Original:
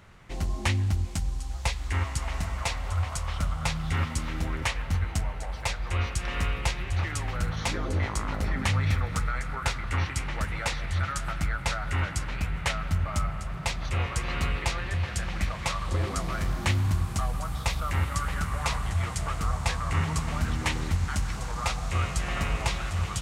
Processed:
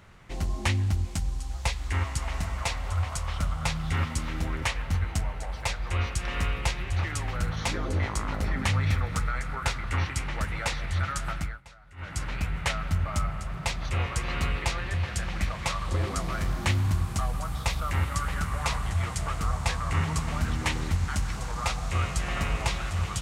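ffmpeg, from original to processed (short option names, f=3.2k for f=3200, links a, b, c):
-filter_complex "[0:a]asplit=3[a][b][c];[a]atrim=end=11.61,asetpts=PTS-STARTPTS,afade=t=out:st=11.34:d=0.27:silence=0.0794328[d];[b]atrim=start=11.61:end=11.96,asetpts=PTS-STARTPTS,volume=-22dB[e];[c]atrim=start=11.96,asetpts=PTS-STARTPTS,afade=t=in:d=0.27:silence=0.0794328[f];[d][e][f]concat=n=3:v=0:a=1"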